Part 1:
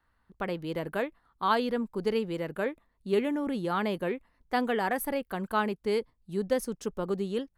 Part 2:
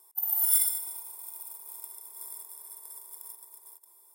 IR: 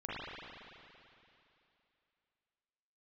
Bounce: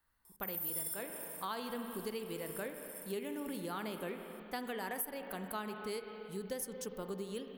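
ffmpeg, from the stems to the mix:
-filter_complex "[0:a]aemphasis=mode=production:type=75fm,volume=-10dB,asplit=3[link_01][link_02][link_03];[link_02]volume=-9dB[link_04];[1:a]adelay=250,volume=-4dB[link_05];[link_03]apad=whole_len=193859[link_06];[link_05][link_06]sidechaincompress=threshold=-41dB:ratio=8:attack=16:release=473[link_07];[2:a]atrim=start_sample=2205[link_08];[link_04][link_08]afir=irnorm=-1:irlink=0[link_09];[link_01][link_07][link_09]amix=inputs=3:normalize=0,acompressor=threshold=-37dB:ratio=4"

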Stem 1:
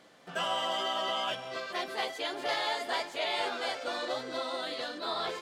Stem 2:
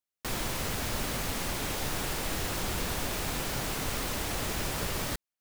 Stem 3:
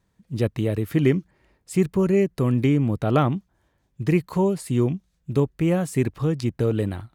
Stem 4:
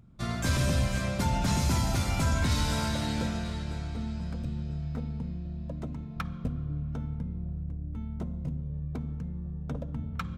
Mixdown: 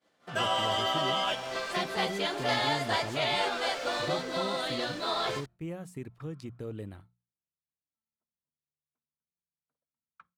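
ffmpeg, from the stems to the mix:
ffmpeg -i stem1.wav -i stem2.wav -i stem3.wav -i stem4.wav -filter_complex "[0:a]volume=3dB[link_01];[1:a]acrossover=split=410 7700:gain=0.141 1 0.1[link_02][link_03][link_04];[link_02][link_03][link_04]amix=inputs=3:normalize=0,adelay=300,volume=-4dB[link_05];[2:a]alimiter=limit=-14.5dB:level=0:latency=1:release=420,volume=-15dB,asplit=2[link_06][link_07];[3:a]bandpass=frequency=1300:width_type=q:width=1.5:csg=0,volume=-14dB[link_08];[link_07]apad=whole_len=251517[link_09];[link_05][link_09]sidechaincompress=threshold=-42dB:ratio=4:attack=7.2:release=1450[link_10];[link_01][link_10][link_06][link_08]amix=inputs=4:normalize=0,agate=range=-33dB:threshold=-45dB:ratio=3:detection=peak,bandreject=frequency=60:width_type=h:width=6,bandreject=frequency=120:width_type=h:width=6,bandreject=frequency=180:width_type=h:width=6" out.wav

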